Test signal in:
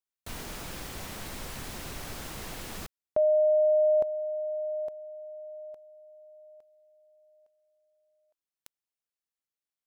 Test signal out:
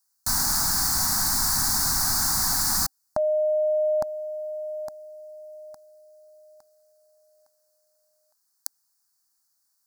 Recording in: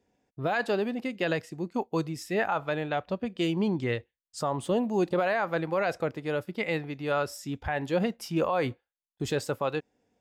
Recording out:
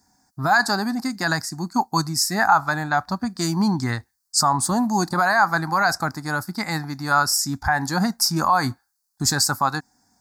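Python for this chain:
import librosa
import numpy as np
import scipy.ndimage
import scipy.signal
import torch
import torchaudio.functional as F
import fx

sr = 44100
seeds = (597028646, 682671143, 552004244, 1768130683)

y = fx.curve_eq(x, sr, hz=(270.0, 500.0, 790.0, 1600.0, 3000.0, 4500.0), db=(0, -20, 6, 6, -21, 14))
y = y * librosa.db_to_amplitude(8.0)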